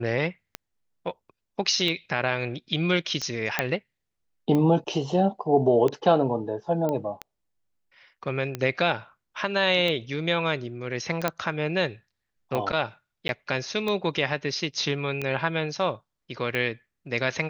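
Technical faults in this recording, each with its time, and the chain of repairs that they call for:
tick 45 rpm -15 dBFS
3.59 pop -7 dBFS
6.89 pop -16 dBFS
11.28 pop -9 dBFS
13.28–13.29 gap 11 ms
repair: de-click; interpolate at 13.28, 11 ms

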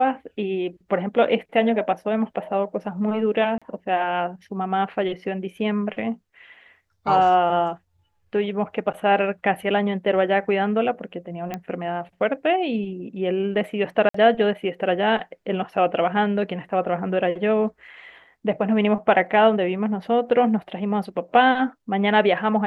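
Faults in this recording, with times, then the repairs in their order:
3.58–3.62 gap 36 ms
11.54 pop -15 dBFS
14.09–14.14 gap 54 ms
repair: de-click; interpolate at 3.58, 36 ms; interpolate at 14.09, 54 ms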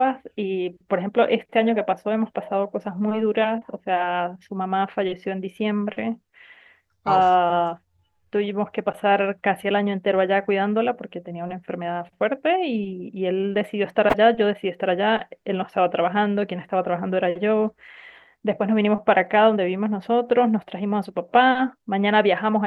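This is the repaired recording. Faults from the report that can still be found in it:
none

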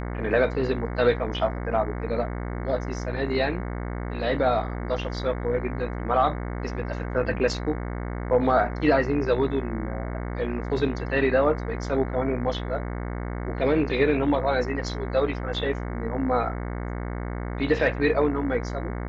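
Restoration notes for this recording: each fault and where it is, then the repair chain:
buzz 60 Hz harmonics 37 -31 dBFS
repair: de-hum 60 Hz, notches 37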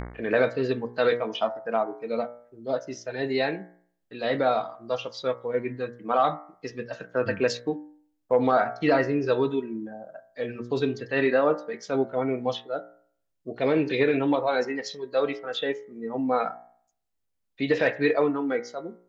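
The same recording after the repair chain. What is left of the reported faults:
none

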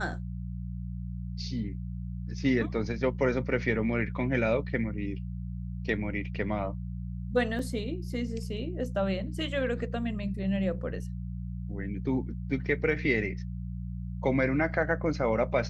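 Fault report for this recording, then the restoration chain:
hum 60 Hz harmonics 3 -36 dBFS
7.59 gap 2.9 ms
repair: de-hum 60 Hz, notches 3; interpolate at 7.59, 2.9 ms

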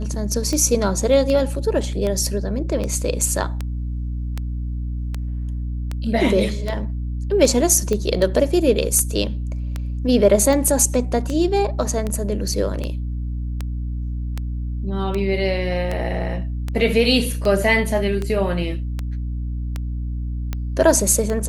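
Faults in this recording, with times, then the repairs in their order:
hum 60 Hz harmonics 5 -25 dBFS
tick 78 rpm -12 dBFS
7.93 pop -11 dBFS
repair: de-click; de-hum 60 Hz, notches 5

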